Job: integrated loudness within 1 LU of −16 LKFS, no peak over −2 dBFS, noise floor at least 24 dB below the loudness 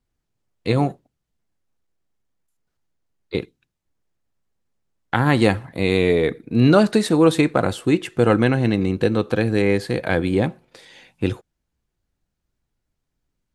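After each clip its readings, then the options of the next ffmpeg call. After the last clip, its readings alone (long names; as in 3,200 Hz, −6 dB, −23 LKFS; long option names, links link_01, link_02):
integrated loudness −19.5 LKFS; sample peak −2.0 dBFS; target loudness −16.0 LKFS
→ -af "volume=3.5dB,alimiter=limit=-2dB:level=0:latency=1"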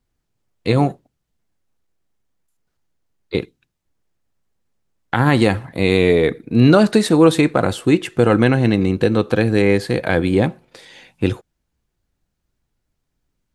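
integrated loudness −16.5 LKFS; sample peak −2.0 dBFS; background noise floor −75 dBFS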